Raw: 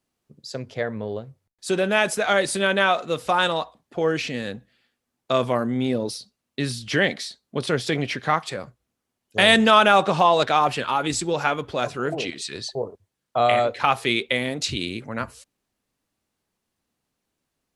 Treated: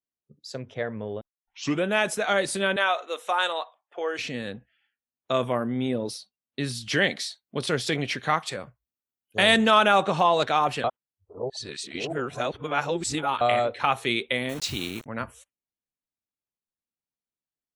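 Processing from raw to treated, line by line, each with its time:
1.21 s: tape start 0.64 s
2.76–4.19 s: high-pass 520 Hz
6.75–9.38 s: treble shelf 2.3 kHz +5 dB
10.84–13.41 s: reverse
14.49–15.06 s: word length cut 6-bit, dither none
whole clip: spectral noise reduction 19 dB; trim -3.5 dB

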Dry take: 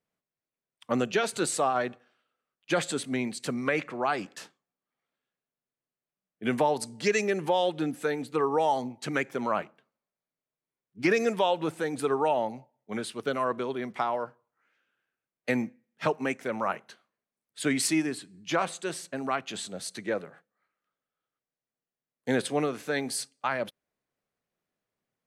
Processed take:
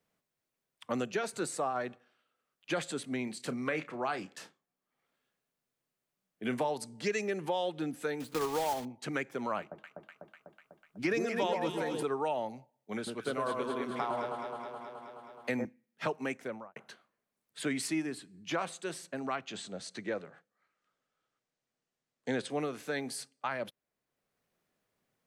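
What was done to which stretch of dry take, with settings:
1.10–1.86 s: peaking EQ 3.2 kHz -6 dB 0.64 oct
3.24–6.71 s: doubling 32 ms -13 dB
8.20–8.87 s: block-companded coder 3-bit
9.59–12.03 s: echo whose repeats swap between lows and highs 124 ms, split 1.1 kHz, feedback 75%, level -3 dB
12.96–15.65 s: echo whose repeats swap between lows and highs 106 ms, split 1.3 kHz, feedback 78%, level -3 dB
16.36–16.76 s: studio fade out
19.20–22.50 s: low-pass 8.2 kHz 24 dB/octave
whole clip: three bands compressed up and down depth 40%; trim -6.5 dB

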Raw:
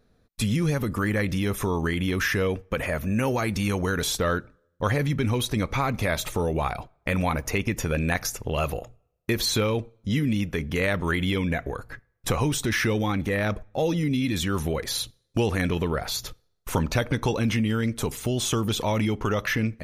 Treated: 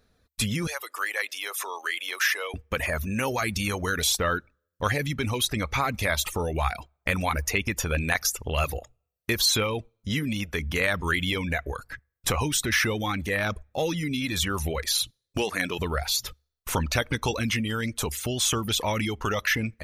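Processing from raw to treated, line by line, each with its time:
0.67–2.54 s: Bessel high-pass 730 Hz, order 6
15.38–15.79 s: high-pass 210 Hz
whole clip: peaking EQ 71 Hz +13 dB 0.29 oct; reverb removal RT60 0.5 s; tilt shelf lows -4.5 dB, about 890 Hz

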